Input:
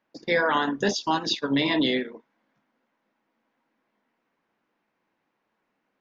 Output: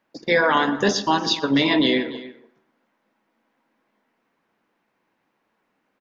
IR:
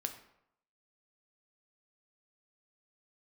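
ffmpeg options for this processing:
-filter_complex "[0:a]aecho=1:1:290:0.126,asplit=2[link_01][link_02];[1:a]atrim=start_sample=2205,highshelf=frequency=3400:gain=-10.5,adelay=119[link_03];[link_02][link_03]afir=irnorm=-1:irlink=0,volume=-12.5dB[link_04];[link_01][link_04]amix=inputs=2:normalize=0,volume=4.5dB"

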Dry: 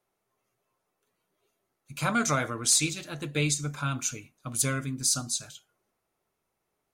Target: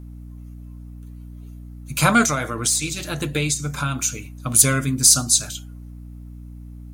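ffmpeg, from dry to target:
ffmpeg -i in.wav -filter_complex "[0:a]alimiter=limit=-16dB:level=0:latency=1:release=463,highshelf=frequency=8200:gain=9,aeval=exprs='0.944*sin(PI/2*2.82*val(0)/0.944)':channel_layout=same,asettb=1/sr,asplit=3[link_01][link_02][link_03];[link_01]atrim=end=2.244[link_04];[link_02]atrim=start=2.24:end=4.5,asetpts=PTS-STARTPTS,afade=type=in:duration=0.004:curve=qsin,afade=type=out:start_time=2.256:duration=0.004:curve=qsin,acompressor=threshold=-22dB:ratio=2.5[link_05];[link_03]atrim=start=4.496[link_06];[link_04][link_05]acrossfade=duration=0.004:curve1=hsin:curve2=qsin[link_07];[link_07][link_06]acrossfade=duration=0.004:curve1=qsin:curve2=hsin,aeval=exprs='val(0)+0.0178*(sin(2*PI*60*n/s)+sin(2*PI*2*60*n/s)/2+sin(2*PI*3*60*n/s)/3+sin(2*PI*4*60*n/s)/4+sin(2*PI*5*60*n/s)/5)':channel_layout=same,volume=-1dB" out.wav

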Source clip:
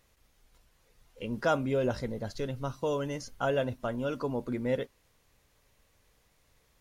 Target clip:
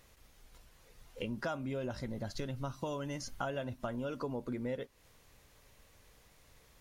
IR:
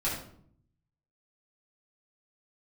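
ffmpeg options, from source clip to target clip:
-filter_complex "[0:a]asettb=1/sr,asplit=3[link_01][link_02][link_03];[link_01]atrim=end=1.254[link_04];[link_02]atrim=start=1.25:end=3.91,asetpts=PTS-STARTPTS,afade=type=in:duration=0.004:curve=qsin,afade=type=out:start_time=2.656:duration=0.004:curve=qsin,equalizer=frequency=460:width=5.8:gain=-10.5[link_05];[link_03]atrim=start=3.906[link_06];[link_04][link_05]acrossfade=duration=0.004:curve1=hsin:curve2=qsin[link_07];[link_07][link_06]acrossfade=duration=0.004:curve1=qsin:curve2=hsin,acompressor=threshold=-41dB:ratio=5,volume=5dB"

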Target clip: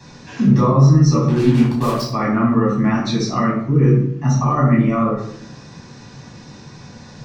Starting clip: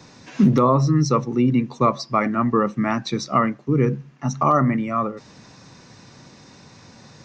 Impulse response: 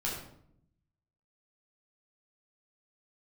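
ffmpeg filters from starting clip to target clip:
-filter_complex "[0:a]alimiter=limit=-14dB:level=0:latency=1:release=94,asettb=1/sr,asplit=3[link_01][link_02][link_03];[link_01]atrim=end=1.284[link_04];[link_02]atrim=start=1.28:end=2.02,asetpts=PTS-STARTPTS,afade=type=in:duration=0.004:curve=qsin,afade=type=out:start_time=0.736:duration=0.004:curve=qsin,acrusher=bits=4:mix=0:aa=0.5[link_05];[link_03]atrim=start=2.016[link_06];[link_04][link_05]acrossfade=duration=0.004:curve1=hsin:curve2=qsin[link_07];[link_07][link_06]acrossfade=duration=0.004:curve1=qsin:curve2=hsin[link_08];[1:a]atrim=start_sample=2205,asetrate=48510,aresample=44100[link_09];[link_08][link_09]afir=irnorm=-1:irlink=0,volume=1.5dB"

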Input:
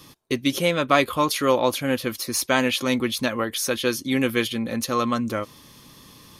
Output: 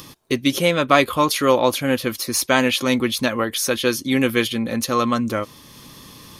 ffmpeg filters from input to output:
ffmpeg -i in.wav -af "acompressor=mode=upward:threshold=-40dB:ratio=2.5,volume=3.5dB" out.wav

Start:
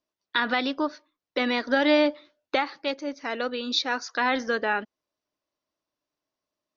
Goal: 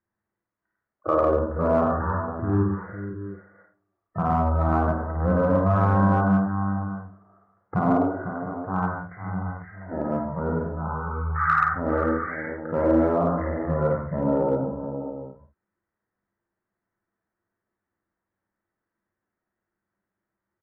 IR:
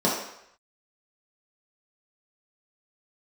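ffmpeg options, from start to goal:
-filter_complex "[0:a]asetrate=14465,aresample=44100,lowpass=frequency=1900:width=0.5412,lowpass=frequency=1900:width=1.3066,lowshelf=frequency=280:gain=-5.5,asplit=2[link_01][link_02];[link_02]adelay=50,volume=-7.5dB[link_03];[link_01][link_03]amix=inputs=2:normalize=0,aecho=1:1:53|99|140|502|668|705:0.596|0.596|0.447|0.335|0.141|0.266,asplit=2[link_04][link_05];[link_05]aeval=exprs='clip(val(0),-1,0.141)':channel_layout=same,volume=-7dB[link_06];[link_04][link_06]amix=inputs=2:normalize=0,volume=-1.5dB"

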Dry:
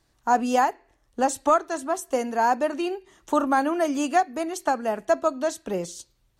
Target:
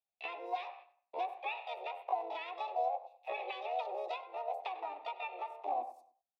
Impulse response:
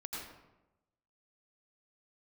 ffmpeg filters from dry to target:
-filter_complex "[0:a]bandreject=frequency=45.94:width_type=h:width=4,bandreject=frequency=91.88:width_type=h:width=4,bandreject=frequency=137.82:width_type=h:width=4,bandreject=frequency=183.76:width_type=h:width=4,bandreject=frequency=229.7:width_type=h:width=4,bandreject=frequency=275.64:width_type=h:width=4,bandreject=frequency=321.58:width_type=h:width=4,bandreject=frequency=367.52:width_type=h:width=4,bandreject=frequency=413.46:width_type=h:width=4,bandreject=frequency=459.4:width_type=h:width=4,bandreject=frequency=505.34:width_type=h:width=4,bandreject=frequency=551.28:width_type=h:width=4,bandreject=frequency=597.22:width_type=h:width=4,bandreject=frequency=643.16:width_type=h:width=4,bandreject=frequency=689.1:width_type=h:width=4,bandreject=frequency=735.04:width_type=h:width=4,bandreject=frequency=780.98:width_type=h:width=4,bandreject=frequency=826.92:width_type=h:width=4,bandreject=frequency=872.86:width_type=h:width=4,bandreject=frequency=918.8:width_type=h:width=4,bandreject=frequency=964.74:width_type=h:width=4,bandreject=frequency=1010.68:width_type=h:width=4,bandreject=frequency=1056.62:width_type=h:width=4,bandreject=frequency=1102.56:width_type=h:width=4,bandreject=frequency=1148.5:width_type=h:width=4,bandreject=frequency=1194.44:width_type=h:width=4,bandreject=frequency=1240.38:width_type=h:width=4,bandreject=frequency=1286.32:width_type=h:width=4,bandreject=frequency=1332.26:width_type=h:width=4,agate=range=-11dB:threshold=-48dB:ratio=16:detection=peak,afwtdn=0.0178,acompressor=threshold=-35dB:ratio=6,asplit=4[link_01][link_02][link_03][link_04];[link_02]asetrate=58866,aresample=44100,atempo=0.749154,volume=-1dB[link_05];[link_03]asetrate=66075,aresample=44100,atempo=0.66742,volume=-3dB[link_06];[link_04]asetrate=88200,aresample=44100,atempo=0.5,volume=-11dB[link_07];[link_01][link_05][link_06][link_07]amix=inputs=4:normalize=0,asplit=3[link_08][link_09][link_10];[link_08]bandpass=frequency=530:width_type=q:width=8,volume=0dB[link_11];[link_09]bandpass=frequency=1840:width_type=q:width=8,volume=-6dB[link_12];[link_10]bandpass=frequency=2480:width_type=q:width=8,volume=-9dB[link_13];[link_11][link_12][link_13]amix=inputs=3:normalize=0,asetrate=62367,aresample=44100,atempo=0.707107,asplit=2[link_14][link_15];[link_15]adelay=98,lowpass=frequency=3100:poles=1,volume=-15.5dB,asplit=2[link_16][link_17];[link_17]adelay=98,lowpass=frequency=3100:poles=1,volume=0.36,asplit=2[link_18][link_19];[link_19]adelay=98,lowpass=frequency=3100:poles=1,volume=0.36[link_20];[link_16][link_18][link_20]amix=inputs=3:normalize=0[link_21];[link_14][link_21]amix=inputs=2:normalize=0,volume=6dB"

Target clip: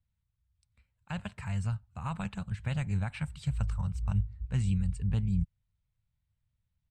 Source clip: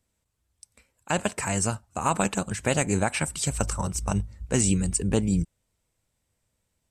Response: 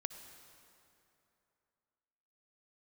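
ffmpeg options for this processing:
-af "firequalizer=gain_entry='entry(130,0);entry(310,-25);entry(870,-15);entry(1400,-13);entry(4000,-13);entry(5800,-27)':delay=0.05:min_phase=1"

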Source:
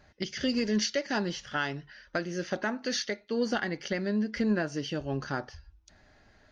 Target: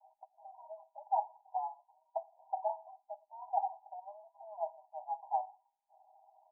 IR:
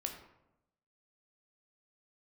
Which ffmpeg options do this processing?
-af "asuperpass=centerf=790:order=20:qfactor=2.4,aecho=1:1:5.1:0.87,volume=4.5dB"

